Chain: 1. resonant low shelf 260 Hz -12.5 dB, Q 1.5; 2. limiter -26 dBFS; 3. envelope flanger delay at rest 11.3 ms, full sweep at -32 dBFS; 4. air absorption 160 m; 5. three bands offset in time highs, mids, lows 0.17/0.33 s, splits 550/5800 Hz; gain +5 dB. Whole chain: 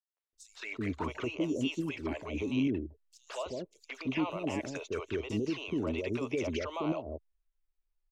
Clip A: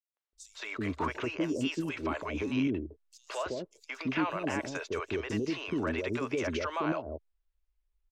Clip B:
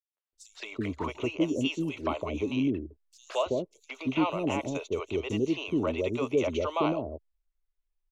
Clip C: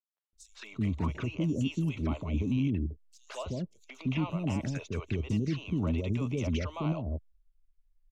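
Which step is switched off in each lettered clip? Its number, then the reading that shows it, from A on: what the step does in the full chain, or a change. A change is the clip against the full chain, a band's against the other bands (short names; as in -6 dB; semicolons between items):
3, 1 kHz band +4.0 dB; 2, mean gain reduction 2.5 dB; 1, loudness change +2.5 LU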